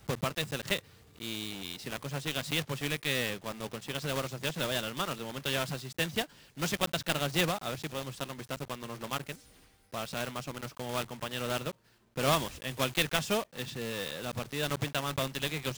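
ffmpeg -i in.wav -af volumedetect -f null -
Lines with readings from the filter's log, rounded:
mean_volume: -34.9 dB
max_volume: -11.2 dB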